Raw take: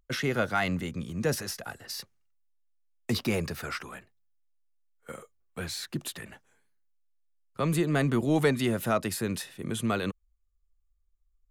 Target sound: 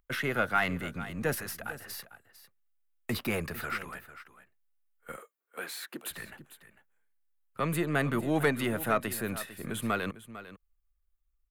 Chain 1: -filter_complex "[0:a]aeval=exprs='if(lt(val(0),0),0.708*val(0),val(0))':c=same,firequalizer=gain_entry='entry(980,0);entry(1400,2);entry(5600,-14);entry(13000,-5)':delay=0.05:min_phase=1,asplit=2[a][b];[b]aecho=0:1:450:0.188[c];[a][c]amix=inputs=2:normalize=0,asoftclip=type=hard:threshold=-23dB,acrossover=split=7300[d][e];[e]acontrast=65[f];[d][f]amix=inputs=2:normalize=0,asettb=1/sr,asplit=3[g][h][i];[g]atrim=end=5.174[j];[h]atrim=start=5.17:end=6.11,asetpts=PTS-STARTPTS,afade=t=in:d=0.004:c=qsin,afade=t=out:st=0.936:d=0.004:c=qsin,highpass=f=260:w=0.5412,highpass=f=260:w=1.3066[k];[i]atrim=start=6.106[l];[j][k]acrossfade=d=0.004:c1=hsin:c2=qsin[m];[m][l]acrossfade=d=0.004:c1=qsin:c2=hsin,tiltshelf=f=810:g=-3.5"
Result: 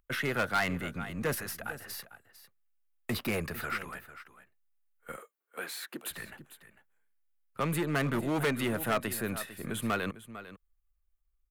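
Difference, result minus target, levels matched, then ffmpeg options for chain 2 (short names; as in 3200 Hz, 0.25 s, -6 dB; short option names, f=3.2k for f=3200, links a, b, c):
hard clip: distortion +37 dB
-filter_complex "[0:a]aeval=exprs='if(lt(val(0),0),0.708*val(0),val(0))':c=same,firequalizer=gain_entry='entry(980,0);entry(1400,2);entry(5600,-14);entry(13000,-5)':delay=0.05:min_phase=1,asplit=2[a][b];[b]aecho=0:1:450:0.188[c];[a][c]amix=inputs=2:normalize=0,asoftclip=type=hard:threshold=-12.5dB,acrossover=split=7300[d][e];[e]acontrast=65[f];[d][f]amix=inputs=2:normalize=0,asettb=1/sr,asplit=3[g][h][i];[g]atrim=end=5.174[j];[h]atrim=start=5.17:end=6.11,asetpts=PTS-STARTPTS,afade=t=in:d=0.004:c=qsin,afade=t=out:st=0.936:d=0.004:c=qsin,highpass=f=260:w=0.5412,highpass=f=260:w=1.3066[k];[i]atrim=start=6.106[l];[j][k]acrossfade=d=0.004:c1=hsin:c2=qsin[m];[m][l]acrossfade=d=0.004:c1=qsin:c2=hsin,tiltshelf=f=810:g=-3.5"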